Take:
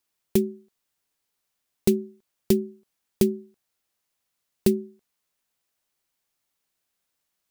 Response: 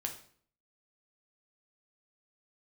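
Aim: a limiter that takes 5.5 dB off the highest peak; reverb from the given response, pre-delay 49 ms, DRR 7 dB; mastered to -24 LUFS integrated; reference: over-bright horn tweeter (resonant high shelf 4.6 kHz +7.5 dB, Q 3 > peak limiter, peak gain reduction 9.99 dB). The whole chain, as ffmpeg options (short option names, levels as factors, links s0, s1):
-filter_complex "[0:a]alimiter=limit=0.282:level=0:latency=1,asplit=2[s0][s1];[1:a]atrim=start_sample=2205,adelay=49[s2];[s1][s2]afir=irnorm=-1:irlink=0,volume=0.422[s3];[s0][s3]amix=inputs=2:normalize=0,highshelf=f=4600:t=q:w=3:g=7.5,volume=2.51,alimiter=limit=0.398:level=0:latency=1"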